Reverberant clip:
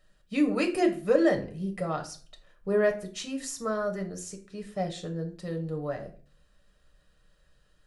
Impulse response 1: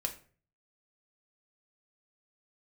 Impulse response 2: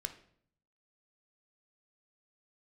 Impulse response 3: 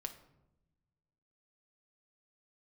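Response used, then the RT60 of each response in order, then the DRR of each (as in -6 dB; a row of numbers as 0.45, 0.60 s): 1; 0.45, 0.60, 0.90 s; 3.0, 6.5, 5.0 dB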